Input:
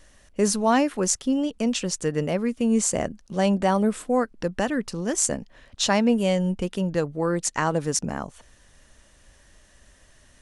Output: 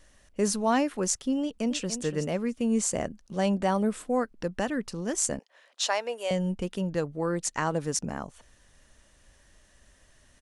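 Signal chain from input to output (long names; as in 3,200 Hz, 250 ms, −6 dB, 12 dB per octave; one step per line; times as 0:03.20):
0:01.41–0:01.98: delay throw 290 ms, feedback 15%, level −10.5 dB
0:05.39–0:06.31: high-pass filter 490 Hz 24 dB per octave
level −4.5 dB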